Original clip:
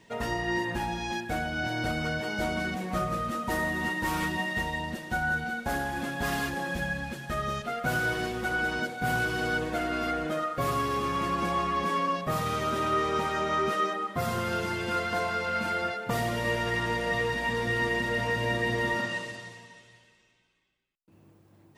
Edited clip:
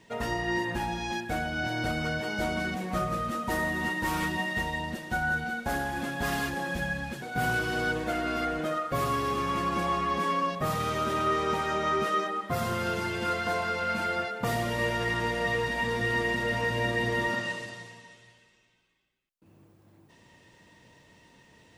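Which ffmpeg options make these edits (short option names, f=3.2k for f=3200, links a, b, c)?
-filter_complex "[0:a]asplit=2[a][b];[a]atrim=end=7.222[c];[b]atrim=start=8.878[d];[c][d]acrossfade=d=0.004:c1=hsin:c2=hsin"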